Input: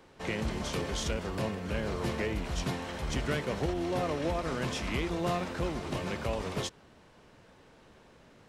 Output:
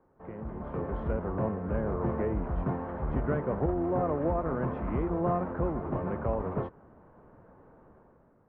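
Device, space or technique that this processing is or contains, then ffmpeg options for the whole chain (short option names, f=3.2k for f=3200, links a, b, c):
action camera in a waterproof case: -af "lowpass=f=1.3k:w=0.5412,lowpass=f=1.3k:w=1.3066,dynaudnorm=f=160:g=9:m=11dB,volume=-8dB" -ar 48000 -c:a aac -b:a 128k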